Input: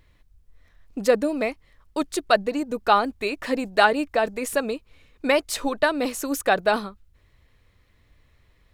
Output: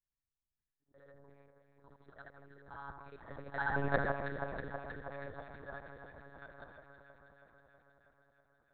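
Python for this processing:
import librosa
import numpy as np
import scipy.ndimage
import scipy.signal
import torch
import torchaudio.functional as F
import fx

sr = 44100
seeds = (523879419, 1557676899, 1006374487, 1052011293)

p1 = fx.frame_reverse(x, sr, frame_ms=175.0)
p2 = fx.doppler_pass(p1, sr, speed_mps=16, closest_m=1.1, pass_at_s=3.91)
p3 = scipy.signal.sosfilt(scipy.signal.butter(2, 62.0, 'highpass', fs=sr, output='sos'), p2)
p4 = p3 + 0.54 * np.pad(p3, (int(1.2 * sr / 1000.0), 0))[:len(p3)]
p5 = fx.level_steps(p4, sr, step_db=13)
p6 = fx.fixed_phaser(p5, sr, hz=730.0, stages=6)
p7 = p6 + fx.echo_alternate(p6, sr, ms=161, hz=1500.0, feedback_pct=84, wet_db=-5, dry=0)
p8 = fx.lpc_monotone(p7, sr, seeds[0], pitch_hz=140.0, order=10)
y = p8 * librosa.db_to_amplitude(9.5)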